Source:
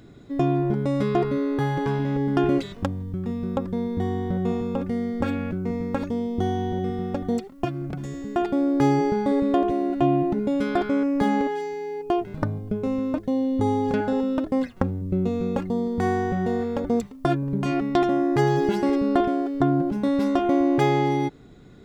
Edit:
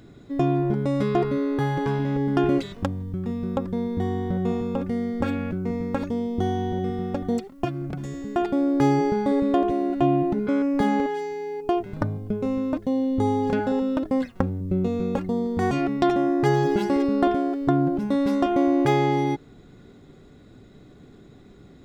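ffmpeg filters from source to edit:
-filter_complex "[0:a]asplit=3[a][b][c];[a]atrim=end=10.472[d];[b]atrim=start=10.878:end=16.122[e];[c]atrim=start=17.638[f];[d][e]acrossfade=d=0.004:c1=hsin:c2=hsin[g];[g][f]acrossfade=d=0.004:c1=hsin:c2=hsin"

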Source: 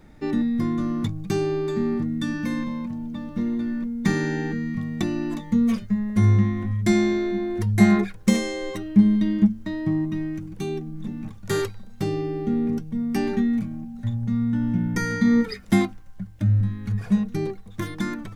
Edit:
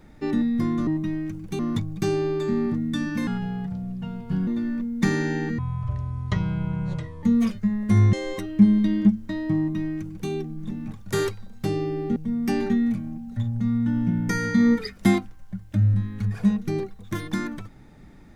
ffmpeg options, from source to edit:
-filter_complex "[0:a]asplit=9[a][b][c][d][e][f][g][h][i];[a]atrim=end=0.872[j];[b]atrim=start=9.948:end=10.672[k];[c]atrim=start=0.868:end=2.554[l];[d]atrim=start=2.55:end=3.5,asetpts=PTS-STARTPTS,asetrate=34839,aresample=44100[m];[e]atrim=start=3.496:end=4.614[n];[f]atrim=start=4.61:end=5.5,asetpts=PTS-STARTPTS,asetrate=23814,aresample=44100,atrim=end_sample=72683,asetpts=PTS-STARTPTS[o];[g]atrim=start=5.496:end=6.402[p];[h]atrim=start=8.498:end=12.532[q];[i]atrim=start=12.828[r];[j][k]acrossfade=d=0.004:c1=hsin:c2=hsin[s];[s][l]acrossfade=d=0.004:c1=hsin:c2=hsin[t];[t][m]acrossfade=d=0.004:c1=hsin:c2=hsin[u];[u][n]acrossfade=d=0.004:c1=hsin:c2=hsin[v];[v][o]acrossfade=d=0.004:c1=hsin:c2=hsin[w];[w][p]acrossfade=d=0.004:c1=hsin:c2=hsin[x];[x][q]acrossfade=d=0.004:c1=hsin:c2=hsin[y];[y][r]acrossfade=d=0.004:c1=hsin:c2=hsin"

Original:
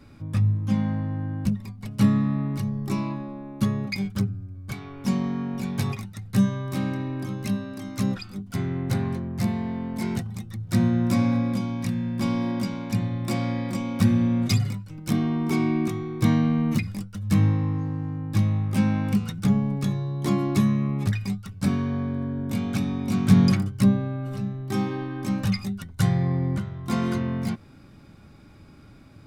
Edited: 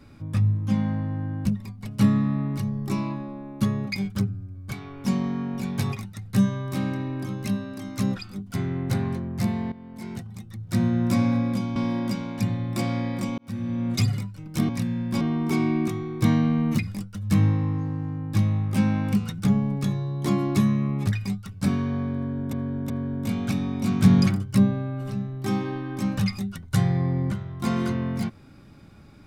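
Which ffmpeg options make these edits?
-filter_complex "[0:a]asplit=8[a][b][c][d][e][f][g][h];[a]atrim=end=9.72,asetpts=PTS-STARTPTS,afade=t=out:st=9.716:d=0.004:c=hsin:silence=0.188365[i];[b]atrim=start=9.72:end=11.762,asetpts=PTS-STARTPTS,afade=t=in:d=1.38:silence=0.188365[j];[c]atrim=start=12.278:end=13.9,asetpts=PTS-STARTPTS,afade=t=out:st=1.618:d=0.004:c=hsin[k];[d]atrim=start=13.9:end=15.212,asetpts=PTS-STARTPTS,afade=t=in:d=0.7[l];[e]atrim=start=11.758:end=12.282[m];[f]atrim=start=15.208:end=22.532[n];[g]atrim=start=22.158:end=22.532[o];[h]atrim=start=22.158[p];[i][j]concat=n=2:v=0:a=1[q];[k][l]concat=n=2:v=0:a=1[r];[q][r]acrossfade=d=0.004:c1=hsin:c2=hsin[s];[s][m]acrossfade=d=0.004:c1=hsin:c2=hsin[t];[t][n]acrossfade=d=0.004:c1=hsin:c2=hsin[u];[u][o]acrossfade=d=0.004:c1=hsin:c2=hsin[v];[v][p]acrossfade=d=0.004:c1=hsin:c2=hsin"

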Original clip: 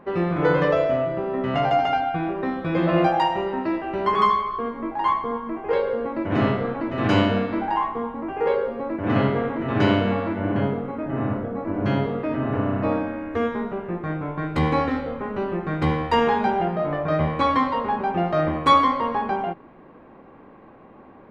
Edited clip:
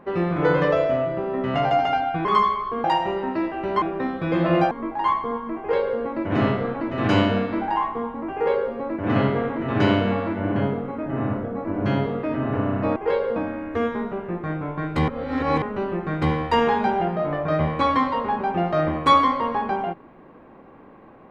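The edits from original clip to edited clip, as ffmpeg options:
-filter_complex "[0:a]asplit=9[a][b][c][d][e][f][g][h][i];[a]atrim=end=2.252[j];[b]atrim=start=4.118:end=4.712[k];[c]atrim=start=3.138:end=4.122[l];[d]atrim=start=2.248:end=3.142[m];[e]atrim=start=4.708:end=12.962[n];[f]atrim=start=5.588:end=5.992[o];[g]atrim=start=12.958:end=14.682[p];[h]atrim=start=14.678:end=15.222,asetpts=PTS-STARTPTS,areverse[q];[i]atrim=start=15.218[r];[j][k]acrossfade=d=0.004:c1=hsin:c2=hsin[s];[s][l]acrossfade=d=0.004:c1=hsin:c2=hsin[t];[t][m]acrossfade=d=0.004:c1=hsin:c2=hsin[u];[u][n]acrossfade=d=0.004:c1=hsin:c2=hsin[v];[v][o]acrossfade=d=0.004:c1=hsin:c2=hsin[w];[w][p]acrossfade=d=0.004:c1=hsin:c2=hsin[x];[x][q]acrossfade=d=0.004:c1=hsin:c2=hsin[y];[y][r]acrossfade=d=0.004:c1=hsin:c2=hsin"

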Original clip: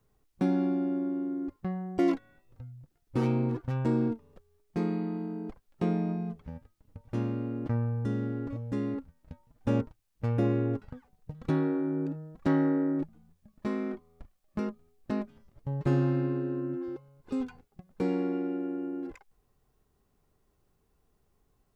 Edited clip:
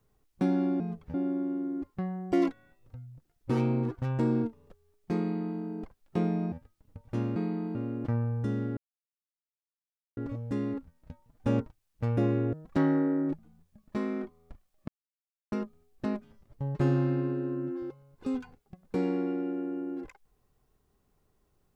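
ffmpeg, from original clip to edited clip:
-filter_complex "[0:a]asplit=9[a][b][c][d][e][f][g][h][i];[a]atrim=end=0.802[j];[b]atrim=start=6.178:end=6.522[k];[c]atrim=start=0.798:end=6.182[l];[d]atrim=start=6.518:end=7.362[m];[e]atrim=start=4.858:end=5.252[n];[f]atrim=start=7.358:end=8.38,asetpts=PTS-STARTPTS,afade=t=out:st=1.018:d=0.004:c=hsin,apad=pad_dur=1.4[o];[g]atrim=start=8.38:end=10.742,asetpts=PTS-STARTPTS,afade=t=in:d=0.004:c=hsin[p];[h]atrim=start=12.228:end=14.58,asetpts=PTS-STARTPTS,afade=t=out:st=2.348:d=0.004:c=hsin,apad=pad_dur=0.64[q];[i]atrim=start=14.58,asetpts=PTS-STARTPTS,afade=t=in:d=0.004:c=hsin[r];[j][k]acrossfade=d=0.004:c1=hsin:c2=hsin[s];[s][l]acrossfade=d=0.004:c1=hsin:c2=hsin[t];[t][m]acrossfade=d=0.004:c1=hsin:c2=hsin[u];[u][n]acrossfade=d=0.004:c1=hsin:c2=hsin[v];[o][p]concat=n=2:v=0:a=1[w];[v][w]acrossfade=d=0.004:c1=hsin:c2=hsin[x];[q][r]concat=n=2:v=0:a=1[y];[x][y]acrossfade=d=0.004:c1=hsin:c2=hsin"

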